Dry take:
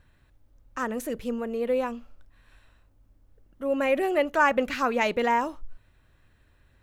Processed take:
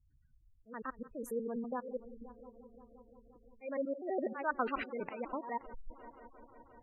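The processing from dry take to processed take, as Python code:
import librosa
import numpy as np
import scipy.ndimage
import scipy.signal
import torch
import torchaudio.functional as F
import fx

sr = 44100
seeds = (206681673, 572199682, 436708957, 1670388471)

y = fx.block_reorder(x, sr, ms=82.0, group=4)
y = fx.auto_swell(y, sr, attack_ms=250.0)
y = fx.echo_heads(y, sr, ms=175, heads='first and third', feedback_pct=69, wet_db=-18.0)
y = fx.spec_gate(y, sr, threshold_db=-15, keep='strong')
y = y * 10.0 ** (-7.5 / 20.0)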